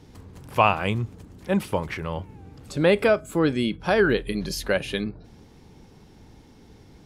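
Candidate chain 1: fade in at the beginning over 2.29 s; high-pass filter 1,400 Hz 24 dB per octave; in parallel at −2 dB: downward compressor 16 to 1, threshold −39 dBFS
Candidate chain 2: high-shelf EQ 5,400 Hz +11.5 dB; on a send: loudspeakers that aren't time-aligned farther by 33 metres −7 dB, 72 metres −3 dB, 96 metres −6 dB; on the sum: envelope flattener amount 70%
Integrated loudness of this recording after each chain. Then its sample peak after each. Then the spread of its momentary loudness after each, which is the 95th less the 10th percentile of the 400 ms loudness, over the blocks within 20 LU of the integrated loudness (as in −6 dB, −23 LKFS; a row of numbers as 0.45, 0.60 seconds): −31.0, −17.5 LKFS; −13.0, −2.0 dBFS; 19, 9 LU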